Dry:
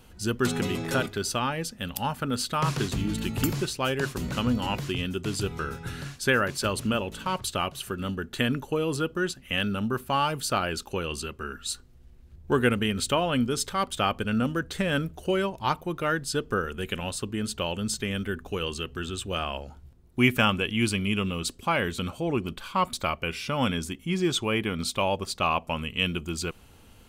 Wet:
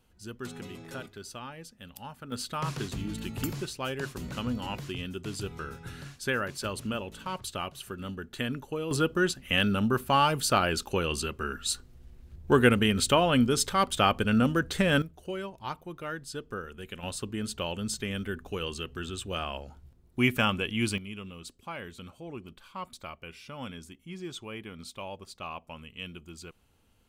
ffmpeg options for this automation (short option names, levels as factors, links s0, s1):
-af "asetnsamples=n=441:p=0,asendcmd='2.32 volume volume -6.5dB;8.91 volume volume 2dB;15.02 volume volume -10dB;17.03 volume volume -3.5dB;20.98 volume volume -14dB',volume=0.2"